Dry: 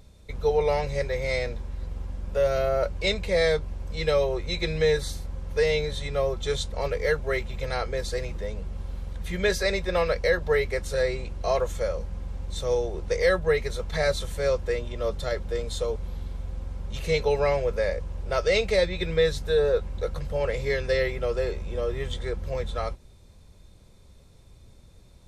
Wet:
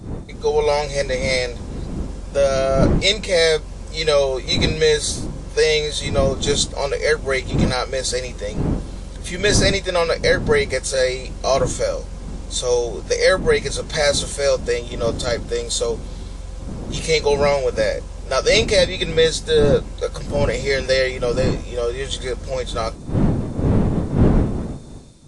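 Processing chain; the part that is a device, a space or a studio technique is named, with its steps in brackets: tone controls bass -6 dB, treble +11 dB; smartphone video outdoors (wind noise; level rider gain up to 5.5 dB; trim +1.5 dB; AAC 64 kbps 22.05 kHz)

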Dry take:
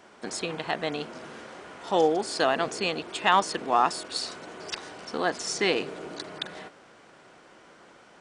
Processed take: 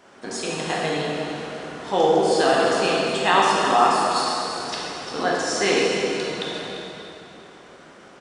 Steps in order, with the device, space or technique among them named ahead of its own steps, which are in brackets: cave (delay 345 ms -11 dB; reverberation RT60 2.9 s, pre-delay 7 ms, DRR -5 dB)

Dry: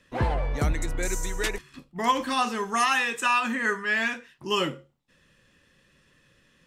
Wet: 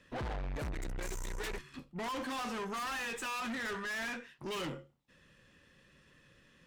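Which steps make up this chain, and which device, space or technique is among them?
tube preamp driven hard (valve stage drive 36 dB, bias 0.35; treble shelf 4.9 kHz -5 dB)

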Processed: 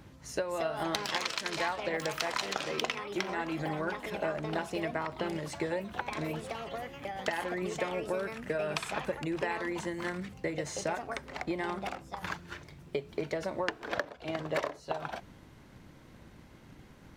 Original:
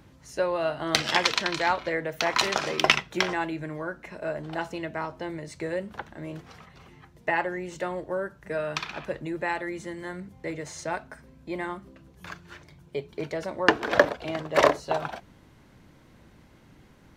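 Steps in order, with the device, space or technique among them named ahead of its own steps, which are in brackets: drum-bus smash (transient shaper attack +5 dB, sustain +1 dB; compression 12:1, threshold -29 dBFS, peak gain reduction 22.5 dB; saturation -14.5 dBFS, distortion -27 dB); ever faster or slower copies 305 ms, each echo +4 st, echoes 3, each echo -6 dB

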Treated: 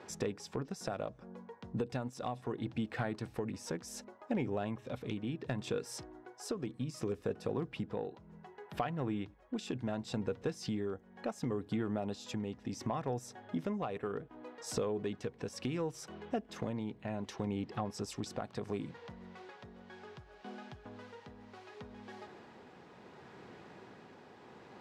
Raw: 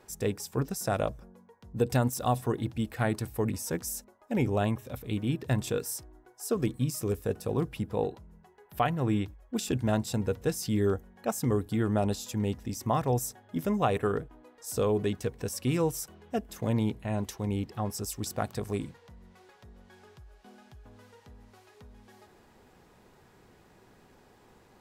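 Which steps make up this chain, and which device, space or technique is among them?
AM radio (band-pass 140–4200 Hz; compression 6:1, threshold -39 dBFS, peak gain reduction 17 dB; saturation -28 dBFS, distortion -23 dB; tremolo 0.68 Hz, depth 31%); trim +7 dB

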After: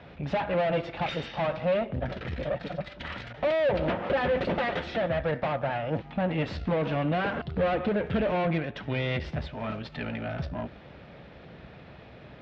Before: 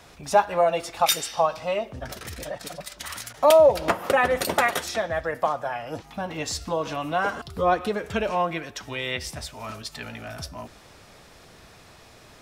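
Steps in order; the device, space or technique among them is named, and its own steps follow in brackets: guitar amplifier (valve stage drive 31 dB, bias 0.75; tone controls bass +10 dB, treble -8 dB; cabinet simulation 76–3700 Hz, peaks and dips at 98 Hz -9 dB, 550 Hz +5 dB, 1.1 kHz -5 dB); trim +5 dB

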